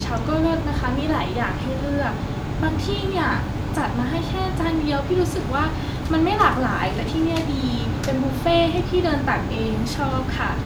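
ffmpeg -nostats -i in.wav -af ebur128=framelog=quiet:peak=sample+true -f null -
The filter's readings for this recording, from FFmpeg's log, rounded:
Integrated loudness:
  I:         -22.3 LUFS
  Threshold: -32.3 LUFS
Loudness range:
  LRA:         2.7 LU
  Threshold: -42.3 LUFS
  LRA low:   -23.7 LUFS
  LRA high:  -21.0 LUFS
Sample peak:
  Peak:       -3.7 dBFS
True peak:
  Peak:       -3.7 dBFS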